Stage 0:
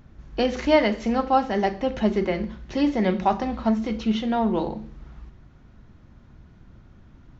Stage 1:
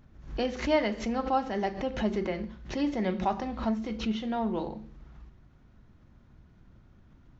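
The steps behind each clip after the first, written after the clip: backwards sustainer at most 120 dB/s; gain -7.5 dB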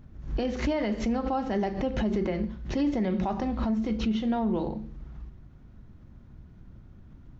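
low shelf 430 Hz +8 dB; limiter -19.5 dBFS, peak gain reduction 9.5 dB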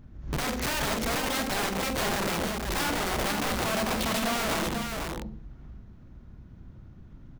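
wrapped overs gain 25 dB; tapped delay 47/87/490 ms -8.5/-14/-4.5 dB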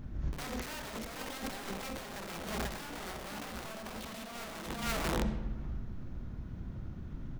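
negative-ratio compressor -35 dBFS, ratio -0.5; on a send at -10 dB: reverb RT60 1.2 s, pre-delay 25 ms; on the sum: gain -2 dB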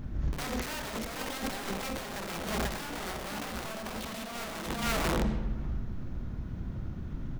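hard clip -29 dBFS, distortion -18 dB; gain +5 dB

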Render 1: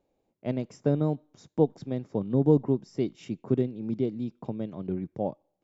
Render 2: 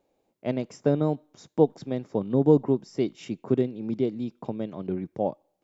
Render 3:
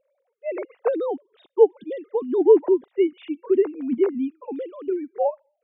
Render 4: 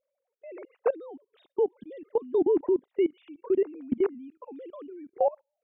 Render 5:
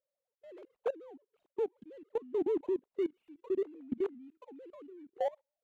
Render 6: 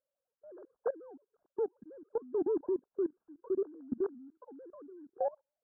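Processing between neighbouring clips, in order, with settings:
low shelf 210 Hz -8.5 dB; gain +5 dB
sine-wave speech; gain +4 dB
level quantiser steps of 21 dB
median filter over 25 samples; gain -8 dB
brick-wall FIR low-pass 1700 Hz

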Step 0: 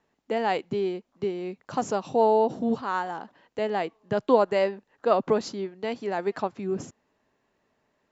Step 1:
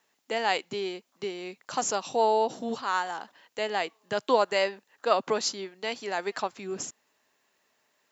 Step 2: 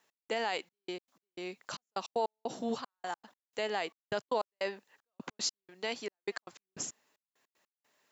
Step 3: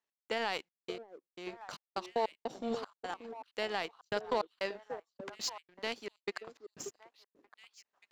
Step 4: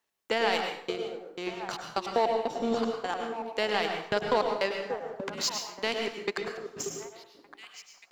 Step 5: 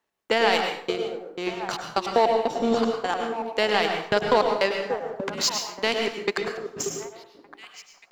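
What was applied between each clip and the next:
tilt +4 dB/oct
limiter -19.5 dBFS, peak gain reduction 9 dB; step gate "x..xxxx..x." 153 bpm -60 dB; gain -2 dB
LPF 6500 Hz 12 dB/oct; delay with a stepping band-pass 0.582 s, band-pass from 390 Hz, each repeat 1.4 oct, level -4 dB; power-law curve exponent 1.4; gain +1.5 dB
in parallel at -3 dB: compressor, threshold -42 dBFS, peak gain reduction 14.5 dB; on the sum: plate-style reverb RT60 0.65 s, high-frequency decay 0.75×, pre-delay 90 ms, DRR 3.5 dB; gain +5 dB
mismatched tape noise reduction decoder only; gain +6 dB

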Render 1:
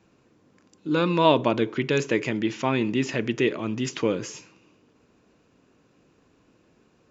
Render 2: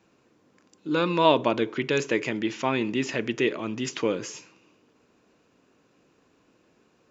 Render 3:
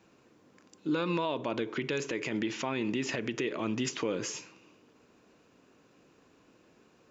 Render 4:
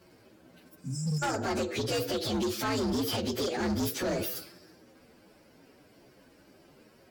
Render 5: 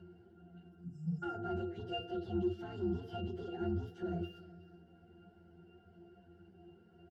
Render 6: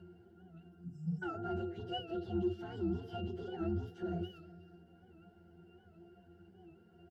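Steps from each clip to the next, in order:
low shelf 170 Hz -9 dB
compressor, threshold -26 dBFS, peak gain reduction 12 dB; limiter -23 dBFS, peak gain reduction 9 dB; gain +1 dB
inharmonic rescaling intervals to 127%; spectral repair 0.85–1.2, 290–5000 Hz before; hard clip -35 dBFS, distortion -9 dB; gain +8.5 dB
upward compressor, threshold -41 dBFS; octave resonator F, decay 0.18 s; echo 0.37 s -19 dB; gain +2.5 dB
record warp 78 rpm, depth 100 cents

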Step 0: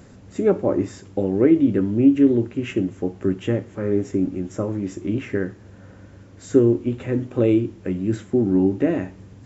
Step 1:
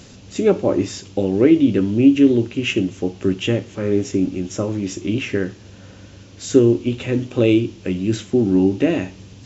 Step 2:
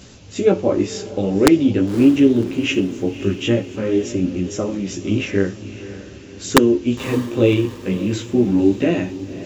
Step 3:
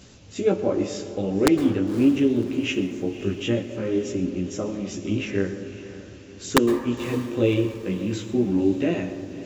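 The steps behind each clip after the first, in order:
band shelf 4100 Hz +12 dB; gain +2.5 dB
chorus voices 2, 0.46 Hz, delay 16 ms, depth 4.5 ms; wrapped overs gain 5 dB; diffused feedback echo 0.55 s, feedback 49%, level -14.5 dB; gain +3.5 dB
plate-style reverb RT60 1.5 s, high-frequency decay 0.3×, pre-delay 0.1 s, DRR 11 dB; gain -6 dB

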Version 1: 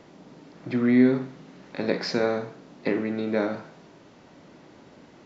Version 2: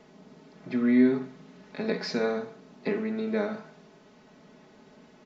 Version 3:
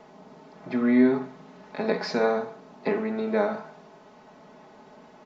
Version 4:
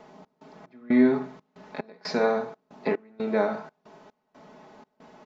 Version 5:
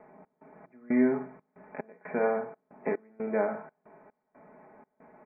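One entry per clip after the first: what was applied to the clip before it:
comb 4.7 ms, depth 72%; gain -5.5 dB
bell 850 Hz +10 dB 1.4 oct
step gate "xxx..xxx...xxx" 183 bpm -24 dB
rippled Chebyshev low-pass 2400 Hz, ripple 3 dB; gain -3 dB

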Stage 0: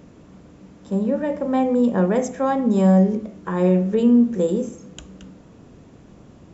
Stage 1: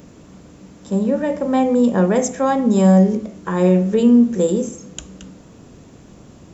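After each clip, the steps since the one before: high shelf 5400 Hz +12 dB; gain +3 dB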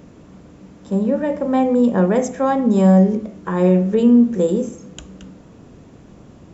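high shelf 4500 Hz -10.5 dB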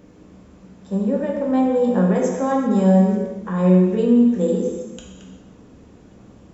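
non-linear reverb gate 0.42 s falling, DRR -0.5 dB; gain -6 dB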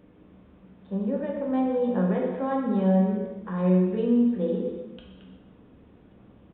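downsampling 8000 Hz; gain -7 dB

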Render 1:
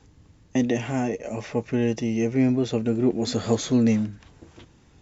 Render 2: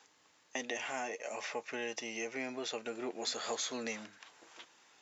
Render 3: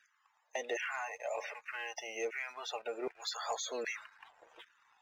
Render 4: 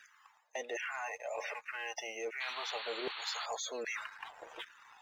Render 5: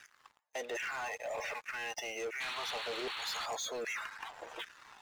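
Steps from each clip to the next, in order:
HPF 860 Hz 12 dB/oct; compressor 2:1, threshold -39 dBFS, peak gain reduction 7 dB; gain +1 dB
LFO high-pass saw down 1.3 Hz 400–1700 Hz; loudest bins only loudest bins 64; sample leveller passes 1; gain -5 dB
reverse; compressor 4:1, threshold -50 dBFS, peak gain reduction 15 dB; reverse; painted sound noise, 2.4–3.46, 770–4500 Hz -54 dBFS; gain +10.5 dB
sample leveller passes 3; gain -7.5 dB

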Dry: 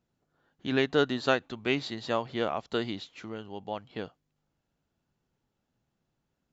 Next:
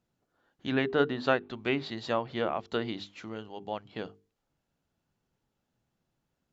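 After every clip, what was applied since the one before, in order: treble ducked by the level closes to 2600 Hz, closed at -25 dBFS; notches 50/100/150/200/250/300/350/400/450 Hz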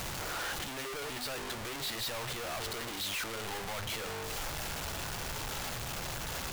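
infinite clipping; bell 230 Hz -11.5 dB 2 oct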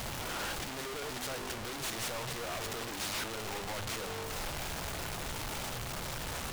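noise-modulated delay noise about 1400 Hz, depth 0.092 ms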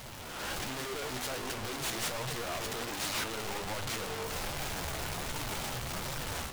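AGC gain up to 10.5 dB; limiter -21.5 dBFS, peak gain reduction 3.5 dB; flange 1.3 Hz, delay 6.2 ms, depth 9.8 ms, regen +53%; gain -3 dB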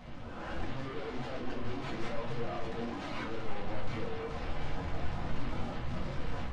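bin magnitudes rounded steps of 15 dB; tape spacing loss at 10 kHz 32 dB; shoebox room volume 270 m³, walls furnished, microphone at 2 m; gain -2.5 dB

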